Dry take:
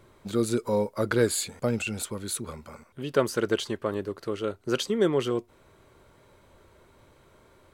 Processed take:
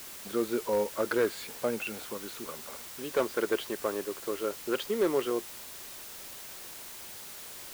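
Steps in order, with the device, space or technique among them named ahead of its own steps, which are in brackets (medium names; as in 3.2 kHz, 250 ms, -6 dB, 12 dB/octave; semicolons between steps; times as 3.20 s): aircraft radio (band-pass 320–2600 Hz; hard clipper -19 dBFS, distortion -16 dB; white noise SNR 11 dB); trim -1 dB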